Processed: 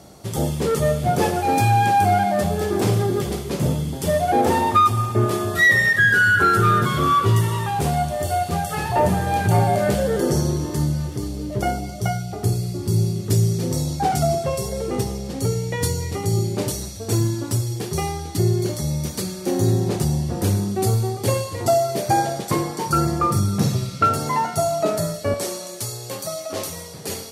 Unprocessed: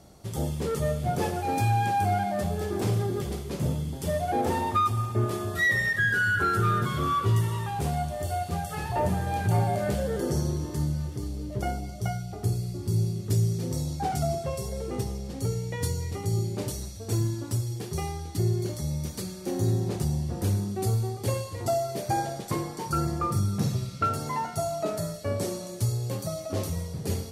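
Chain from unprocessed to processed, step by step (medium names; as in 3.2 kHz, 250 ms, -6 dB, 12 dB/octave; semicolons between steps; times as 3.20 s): high-pass 120 Hz 6 dB/octave, from 25.34 s 780 Hz; trim +9 dB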